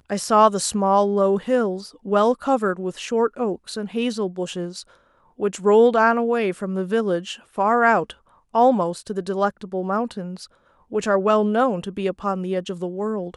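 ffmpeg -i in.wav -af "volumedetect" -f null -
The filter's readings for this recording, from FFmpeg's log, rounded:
mean_volume: -21.4 dB
max_volume: -3.0 dB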